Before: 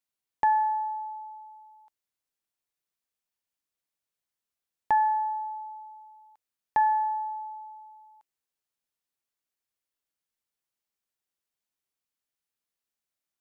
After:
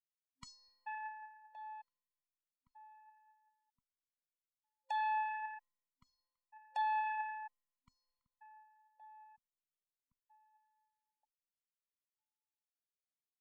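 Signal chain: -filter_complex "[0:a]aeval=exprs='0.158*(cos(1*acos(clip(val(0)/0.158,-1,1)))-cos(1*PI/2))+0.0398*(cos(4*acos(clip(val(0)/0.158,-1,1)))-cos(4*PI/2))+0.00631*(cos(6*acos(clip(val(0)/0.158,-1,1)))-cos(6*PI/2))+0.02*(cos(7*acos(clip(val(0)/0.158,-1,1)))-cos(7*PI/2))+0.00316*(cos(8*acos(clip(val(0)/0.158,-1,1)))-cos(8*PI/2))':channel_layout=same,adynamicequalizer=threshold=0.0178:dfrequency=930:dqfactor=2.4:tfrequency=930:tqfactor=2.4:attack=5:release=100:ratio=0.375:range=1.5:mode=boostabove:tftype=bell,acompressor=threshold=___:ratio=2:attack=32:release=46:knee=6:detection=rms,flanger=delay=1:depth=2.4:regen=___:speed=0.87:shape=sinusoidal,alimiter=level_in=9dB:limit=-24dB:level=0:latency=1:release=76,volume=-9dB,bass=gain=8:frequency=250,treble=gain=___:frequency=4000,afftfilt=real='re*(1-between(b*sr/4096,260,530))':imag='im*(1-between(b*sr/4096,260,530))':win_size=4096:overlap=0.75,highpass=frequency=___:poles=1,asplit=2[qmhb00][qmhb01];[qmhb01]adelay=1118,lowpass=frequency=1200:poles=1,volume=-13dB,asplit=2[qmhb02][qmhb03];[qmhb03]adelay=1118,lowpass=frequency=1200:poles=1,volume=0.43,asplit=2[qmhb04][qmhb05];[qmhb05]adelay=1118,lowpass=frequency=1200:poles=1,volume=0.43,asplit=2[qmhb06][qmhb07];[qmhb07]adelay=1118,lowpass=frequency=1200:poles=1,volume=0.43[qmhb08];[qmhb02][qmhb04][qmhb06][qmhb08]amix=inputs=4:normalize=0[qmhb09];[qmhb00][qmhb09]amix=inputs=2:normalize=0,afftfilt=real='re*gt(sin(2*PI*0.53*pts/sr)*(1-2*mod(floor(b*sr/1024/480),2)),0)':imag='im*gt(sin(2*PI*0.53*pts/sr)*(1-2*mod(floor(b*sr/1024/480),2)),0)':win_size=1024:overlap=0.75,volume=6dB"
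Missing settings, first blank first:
-45dB, 69, 0, 180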